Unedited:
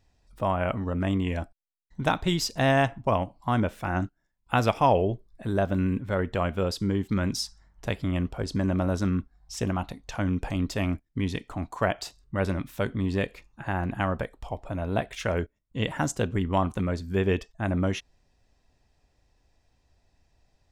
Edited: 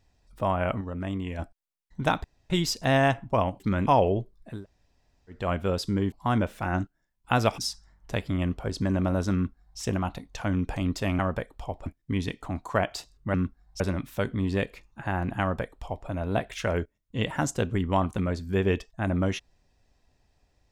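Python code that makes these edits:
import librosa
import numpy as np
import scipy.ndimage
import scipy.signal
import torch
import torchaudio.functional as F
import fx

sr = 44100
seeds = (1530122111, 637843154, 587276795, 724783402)

y = fx.edit(x, sr, fx.clip_gain(start_s=0.81, length_s=0.58, db=-5.5),
    fx.insert_room_tone(at_s=2.24, length_s=0.26),
    fx.swap(start_s=3.34, length_s=1.46, other_s=7.05, other_length_s=0.27),
    fx.room_tone_fill(start_s=5.47, length_s=0.85, crossfade_s=0.24),
    fx.duplicate(start_s=9.08, length_s=0.46, to_s=12.41),
    fx.duplicate(start_s=14.02, length_s=0.67, to_s=10.93), tone=tone)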